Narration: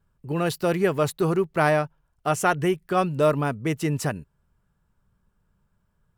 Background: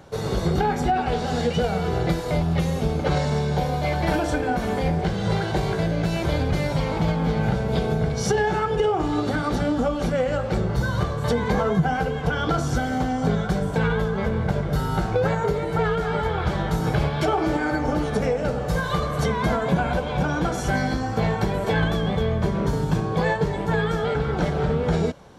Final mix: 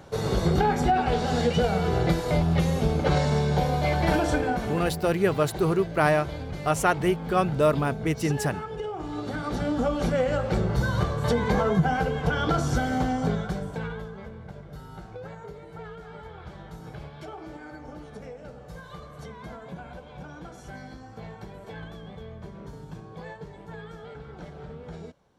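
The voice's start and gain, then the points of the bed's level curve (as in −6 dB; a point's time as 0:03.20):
4.40 s, −1.0 dB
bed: 0:04.38 −0.5 dB
0:05.08 −12 dB
0:08.91 −12 dB
0:09.95 −1.5 dB
0:13.10 −1.5 dB
0:14.39 −18.5 dB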